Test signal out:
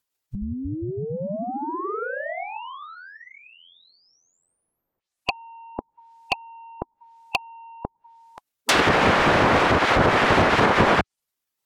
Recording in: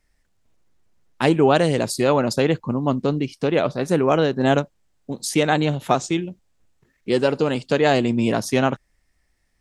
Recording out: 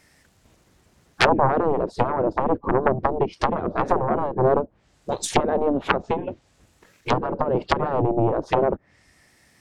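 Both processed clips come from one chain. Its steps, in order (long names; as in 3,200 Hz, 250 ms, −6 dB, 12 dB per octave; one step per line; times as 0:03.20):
treble cut that deepens with the level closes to 310 Hz, closed at −16.5 dBFS
sine wavefolder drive 10 dB, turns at −5.5 dBFS
gate on every frequency bin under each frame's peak −10 dB weak
level +1.5 dB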